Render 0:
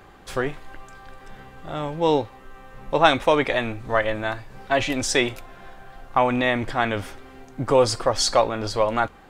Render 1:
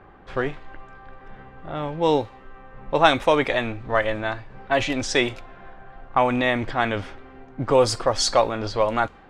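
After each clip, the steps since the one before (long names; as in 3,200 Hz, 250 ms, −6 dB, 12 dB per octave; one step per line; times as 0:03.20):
low-pass that shuts in the quiet parts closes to 1,800 Hz, open at −15.5 dBFS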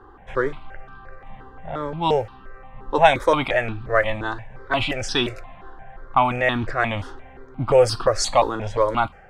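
step-sequenced phaser 5.7 Hz 620–2,100 Hz
level +4 dB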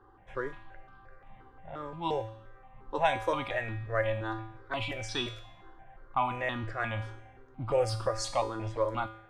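tuned comb filter 110 Hz, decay 0.7 s, harmonics odd, mix 80%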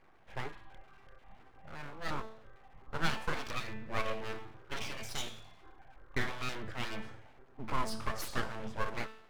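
full-wave rectification
level −2.5 dB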